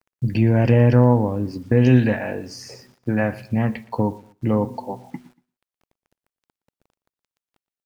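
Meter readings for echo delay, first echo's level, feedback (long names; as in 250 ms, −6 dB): 118 ms, −21.0 dB, 32%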